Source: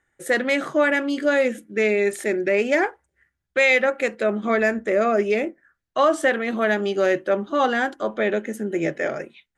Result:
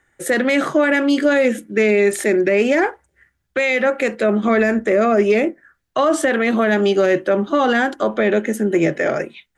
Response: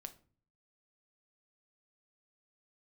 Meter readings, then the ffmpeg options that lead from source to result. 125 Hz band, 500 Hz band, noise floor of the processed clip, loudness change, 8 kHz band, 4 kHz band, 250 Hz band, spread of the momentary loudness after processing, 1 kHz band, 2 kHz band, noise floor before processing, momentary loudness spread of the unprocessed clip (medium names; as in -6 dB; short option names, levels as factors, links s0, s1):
no reading, +4.5 dB, -69 dBFS, +4.5 dB, +7.0 dB, +3.5 dB, +7.5 dB, 5 LU, +3.0 dB, +2.5 dB, -78 dBFS, 7 LU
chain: -filter_complex "[0:a]acrossover=split=300[s0][s1];[s1]alimiter=limit=0.126:level=0:latency=1:release=50[s2];[s0][s2]amix=inputs=2:normalize=0,acontrast=85,volume=1.19"